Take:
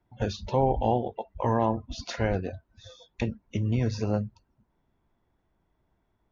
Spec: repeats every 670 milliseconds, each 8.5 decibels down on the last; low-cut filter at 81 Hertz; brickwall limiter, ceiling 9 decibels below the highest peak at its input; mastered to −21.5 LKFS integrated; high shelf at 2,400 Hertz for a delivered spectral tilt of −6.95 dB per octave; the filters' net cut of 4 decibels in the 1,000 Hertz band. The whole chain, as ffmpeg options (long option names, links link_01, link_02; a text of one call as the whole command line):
ffmpeg -i in.wav -af "highpass=81,equalizer=frequency=1000:width_type=o:gain=-4.5,highshelf=frequency=2400:gain=-6,alimiter=limit=-22dB:level=0:latency=1,aecho=1:1:670|1340|2010|2680:0.376|0.143|0.0543|0.0206,volume=14dB" out.wav